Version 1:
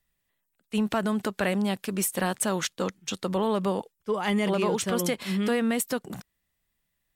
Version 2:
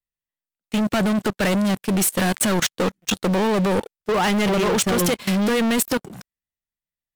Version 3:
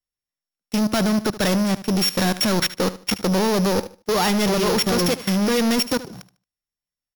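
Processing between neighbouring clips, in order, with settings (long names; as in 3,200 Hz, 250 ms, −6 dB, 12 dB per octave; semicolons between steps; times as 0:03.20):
leveller curve on the samples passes 5; output level in coarse steps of 19 dB
samples sorted by size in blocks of 8 samples; repeating echo 75 ms, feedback 25%, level −15.5 dB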